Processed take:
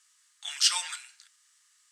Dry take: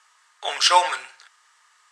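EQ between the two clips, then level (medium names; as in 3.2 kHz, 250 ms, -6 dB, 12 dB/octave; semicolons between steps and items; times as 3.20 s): high-pass 1.2 kHz 12 dB/octave; differentiator; 0.0 dB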